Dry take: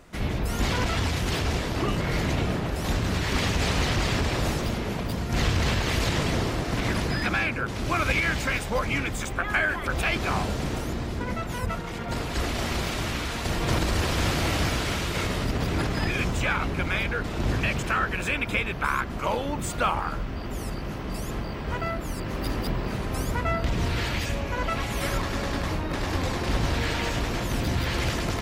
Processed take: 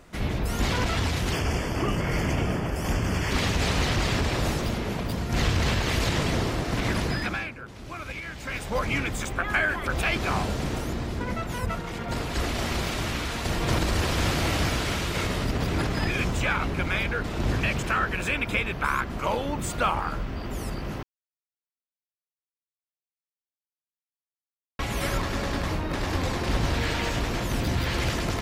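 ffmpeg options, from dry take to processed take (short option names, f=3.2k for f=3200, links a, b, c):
-filter_complex "[0:a]asettb=1/sr,asplit=3[a][b][c];[a]atrim=end=1.324[d];[b]atrim=start=1.32:end=3.31,asetpts=PTS-STARTPTS,afade=t=in:d=0.004:c=qsin,afade=t=out:st=1.986:d=0.004:c=qsin,asuperstop=centerf=3900:order=4:qfactor=3.4[e];[c]atrim=start=3.306[f];[d][e]acrossfade=d=0.004:c1=hsin:c2=qsin[g];[g][f]acrossfade=d=0.004:c1=qsin:c2=hsin,asplit=5[h][i][j][k][l];[h]atrim=end=7.55,asetpts=PTS-STARTPTS,afade=t=out:st=7.09:d=0.46:silence=0.251189[m];[i]atrim=start=7.55:end=8.37,asetpts=PTS-STARTPTS,volume=-12dB[n];[j]atrim=start=8.37:end=21.03,asetpts=PTS-STARTPTS,afade=t=in:d=0.46:silence=0.251189,afade=t=out:st=12.656:d=0.004:c=hsin[o];[k]atrim=start=21.03:end=24.79,asetpts=PTS-STARTPTS,volume=0[p];[l]atrim=start=24.79,asetpts=PTS-STARTPTS,afade=t=in:d=0.004:c=hsin[q];[m][n][o][p][q]concat=n=5:v=0:a=1"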